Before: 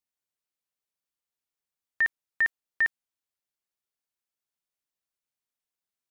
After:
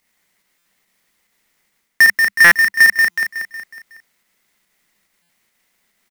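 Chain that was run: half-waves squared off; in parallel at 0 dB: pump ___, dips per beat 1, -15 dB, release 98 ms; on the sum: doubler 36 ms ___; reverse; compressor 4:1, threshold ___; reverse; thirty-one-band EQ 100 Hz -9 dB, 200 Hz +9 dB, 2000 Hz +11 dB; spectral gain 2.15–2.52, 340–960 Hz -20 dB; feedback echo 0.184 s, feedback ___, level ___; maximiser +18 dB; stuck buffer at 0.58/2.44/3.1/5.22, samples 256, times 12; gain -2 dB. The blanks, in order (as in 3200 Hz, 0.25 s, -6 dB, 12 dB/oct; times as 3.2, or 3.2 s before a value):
142 bpm, -13 dB, -28 dBFS, 51%, -9.5 dB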